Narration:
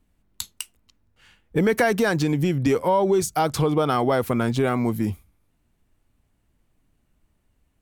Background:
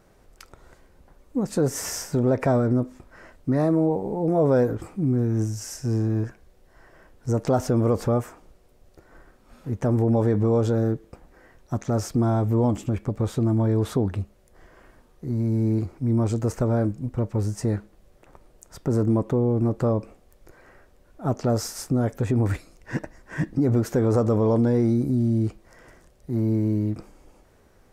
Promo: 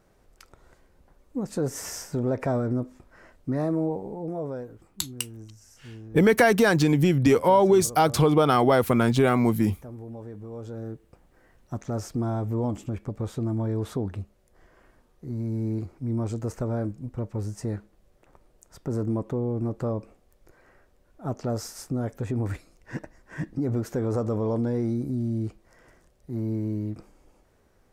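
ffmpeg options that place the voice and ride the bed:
-filter_complex "[0:a]adelay=4600,volume=1.19[s0];[1:a]volume=2.51,afade=t=out:st=3.85:d=0.82:silence=0.199526,afade=t=in:st=10.49:d=1.24:silence=0.223872[s1];[s0][s1]amix=inputs=2:normalize=0"

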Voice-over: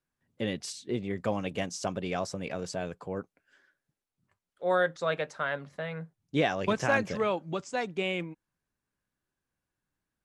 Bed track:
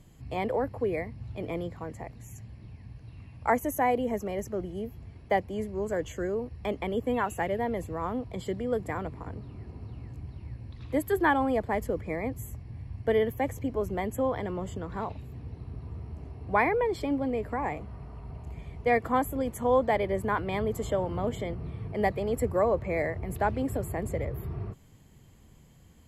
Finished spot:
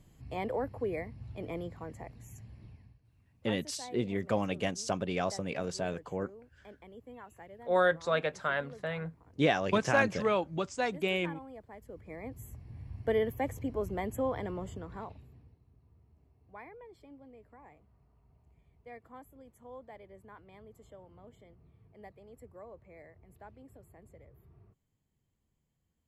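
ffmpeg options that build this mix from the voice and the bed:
-filter_complex "[0:a]adelay=3050,volume=1[s0];[1:a]volume=3.98,afade=t=out:st=2.65:d=0.34:silence=0.158489,afade=t=in:st=11.81:d=1.12:silence=0.141254,afade=t=out:st=14.48:d=1.11:silence=0.0944061[s1];[s0][s1]amix=inputs=2:normalize=0"

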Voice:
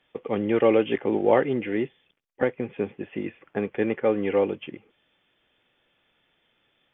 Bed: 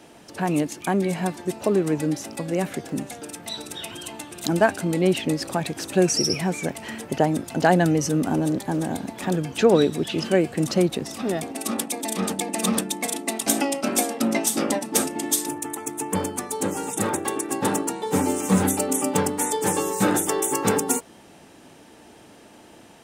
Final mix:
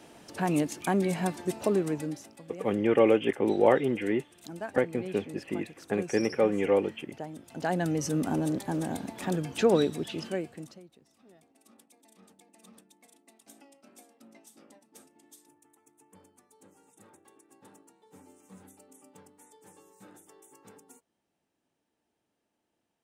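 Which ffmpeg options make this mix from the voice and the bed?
-filter_complex "[0:a]adelay=2350,volume=0.794[s0];[1:a]volume=2.99,afade=t=out:st=1.61:d=0.75:silence=0.16788,afade=t=in:st=7.4:d=0.79:silence=0.211349,afade=t=out:st=9.74:d=1.06:silence=0.0446684[s1];[s0][s1]amix=inputs=2:normalize=0"

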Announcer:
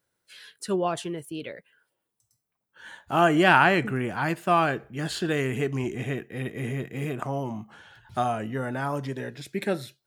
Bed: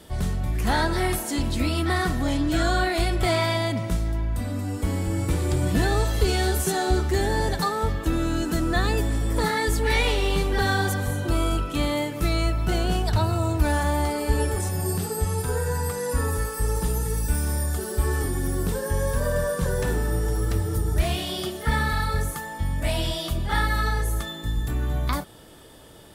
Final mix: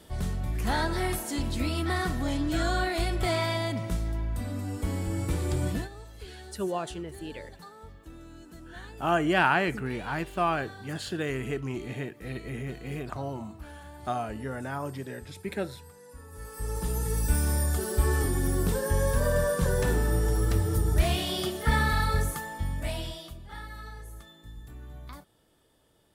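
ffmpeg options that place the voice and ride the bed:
-filter_complex "[0:a]adelay=5900,volume=0.562[s0];[1:a]volume=7.08,afade=t=out:st=5.67:d=0.22:silence=0.125893,afade=t=in:st=16.3:d=1.02:silence=0.0794328,afade=t=out:st=22.15:d=1.23:silence=0.133352[s1];[s0][s1]amix=inputs=2:normalize=0"

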